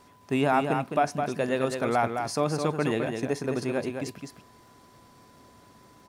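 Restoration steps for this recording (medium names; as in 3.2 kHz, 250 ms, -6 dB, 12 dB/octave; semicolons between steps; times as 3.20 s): de-click; band-stop 1 kHz, Q 30; inverse comb 211 ms -6 dB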